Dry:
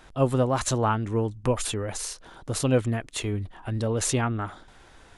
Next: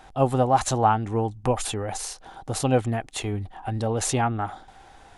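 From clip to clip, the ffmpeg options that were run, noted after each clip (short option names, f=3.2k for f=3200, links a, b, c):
-af "equalizer=f=780:t=o:w=0.27:g=14"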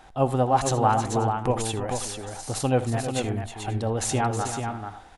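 -af "aecho=1:1:63|79|318|439|537:0.119|0.1|0.299|0.473|0.106,volume=-1.5dB"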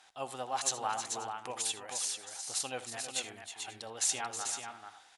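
-af "bandpass=f=6k:t=q:w=0.62:csg=0"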